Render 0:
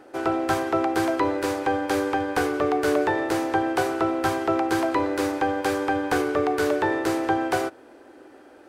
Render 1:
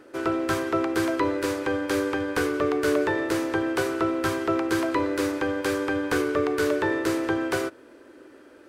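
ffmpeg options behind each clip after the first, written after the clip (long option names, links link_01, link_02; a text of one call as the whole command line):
ffmpeg -i in.wav -af "equalizer=frequency=770:width_type=o:width=0.28:gain=-14.5" out.wav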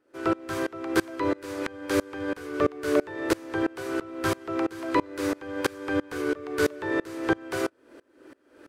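ffmpeg -i in.wav -af "aeval=exprs='val(0)*pow(10,-27*if(lt(mod(-3*n/s,1),2*abs(-3)/1000),1-mod(-3*n/s,1)/(2*abs(-3)/1000),(mod(-3*n/s,1)-2*abs(-3)/1000)/(1-2*abs(-3)/1000))/20)':channel_layout=same,volume=4.5dB" out.wav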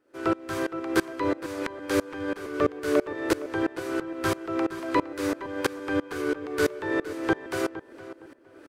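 ffmpeg -i in.wav -filter_complex "[0:a]asplit=2[link_01][link_02];[link_02]adelay=463,lowpass=frequency=2200:poles=1,volume=-13.5dB,asplit=2[link_03][link_04];[link_04]adelay=463,lowpass=frequency=2200:poles=1,volume=0.26,asplit=2[link_05][link_06];[link_06]adelay=463,lowpass=frequency=2200:poles=1,volume=0.26[link_07];[link_01][link_03][link_05][link_07]amix=inputs=4:normalize=0" out.wav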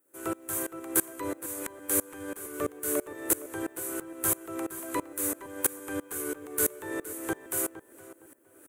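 ffmpeg -i in.wav -af "aexciter=amount=12.2:drive=8.3:freq=7400,volume=-8dB" out.wav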